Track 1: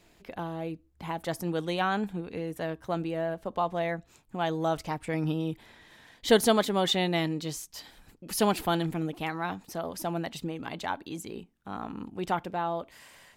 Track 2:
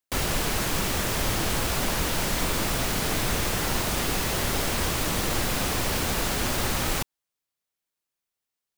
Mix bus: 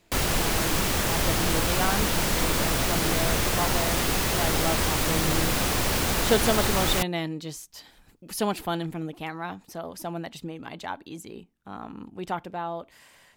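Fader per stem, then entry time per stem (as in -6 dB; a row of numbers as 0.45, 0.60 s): -1.5, +1.5 dB; 0.00, 0.00 s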